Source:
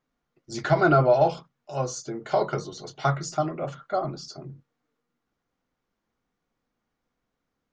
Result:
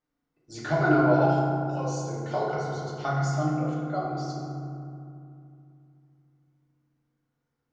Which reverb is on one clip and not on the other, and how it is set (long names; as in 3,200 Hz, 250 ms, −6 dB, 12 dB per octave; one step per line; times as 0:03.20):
feedback delay network reverb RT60 2.5 s, low-frequency decay 1.45×, high-frequency decay 0.4×, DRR −5 dB
level −8.5 dB